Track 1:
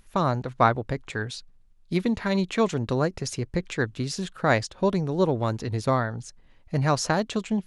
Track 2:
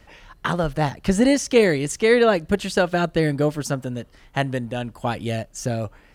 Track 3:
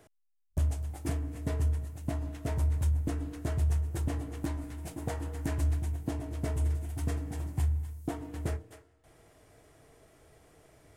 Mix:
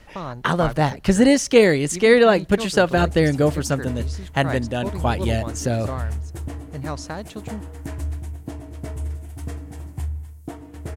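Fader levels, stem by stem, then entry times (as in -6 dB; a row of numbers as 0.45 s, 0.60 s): -8.0 dB, +2.5 dB, +1.0 dB; 0.00 s, 0.00 s, 2.40 s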